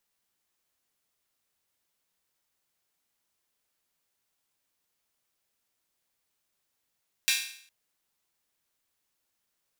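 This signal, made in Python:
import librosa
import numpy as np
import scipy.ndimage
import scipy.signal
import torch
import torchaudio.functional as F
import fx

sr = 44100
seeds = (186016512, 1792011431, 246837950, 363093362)

y = fx.drum_hat_open(sr, length_s=0.41, from_hz=2400.0, decay_s=0.59)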